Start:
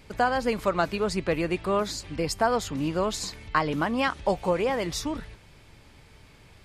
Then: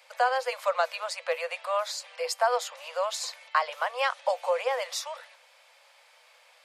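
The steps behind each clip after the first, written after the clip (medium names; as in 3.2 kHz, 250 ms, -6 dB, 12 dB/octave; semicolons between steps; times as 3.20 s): Chebyshev high-pass 490 Hz, order 10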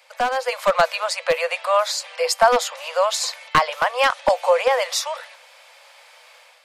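one-sided wavefolder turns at -18.5 dBFS; level rider gain up to 7 dB; trim +3 dB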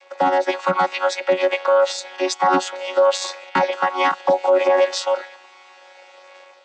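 vocoder on a held chord bare fifth, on F#3; peak limiter -15.5 dBFS, peak gain reduction 10.5 dB; trim +7.5 dB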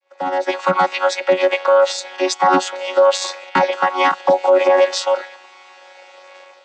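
fade-in on the opening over 0.62 s; trim +3 dB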